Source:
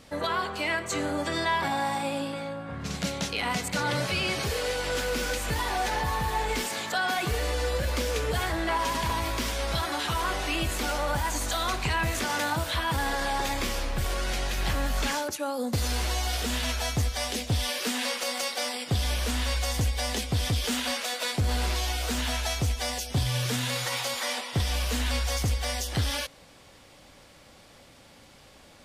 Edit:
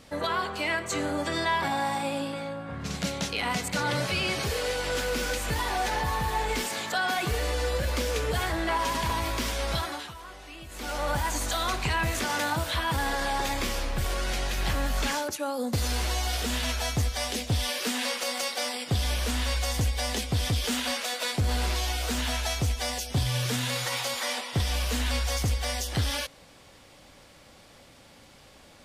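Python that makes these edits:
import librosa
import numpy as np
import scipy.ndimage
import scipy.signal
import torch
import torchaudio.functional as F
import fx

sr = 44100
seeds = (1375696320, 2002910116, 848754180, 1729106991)

y = fx.edit(x, sr, fx.fade_down_up(start_s=9.74, length_s=1.34, db=-15.5, fade_s=0.39), tone=tone)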